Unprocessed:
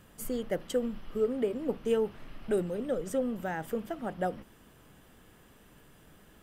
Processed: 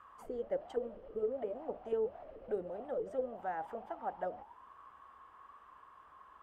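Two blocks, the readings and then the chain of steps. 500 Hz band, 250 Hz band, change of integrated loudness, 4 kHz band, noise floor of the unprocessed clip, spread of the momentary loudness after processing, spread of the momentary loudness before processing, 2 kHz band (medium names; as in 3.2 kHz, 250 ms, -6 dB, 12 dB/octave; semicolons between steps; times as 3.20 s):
-6.0 dB, -15.0 dB, -7.0 dB, under -15 dB, -59 dBFS, 20 LU, 7 LU, -10.0 dB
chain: resonant low shelf 100 Hz +13.5 dB, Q 1.5; auto-wah 440–1200 Hz, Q 16, down, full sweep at -23.5 dBFS; spectrum-flattening compressor 2:1; trim -1 dB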